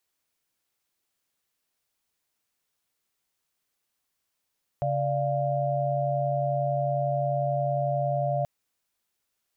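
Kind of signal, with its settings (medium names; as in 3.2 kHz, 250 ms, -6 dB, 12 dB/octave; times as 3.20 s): chord C#3/D5/F5 sine, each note -28 dBFS 3.63 s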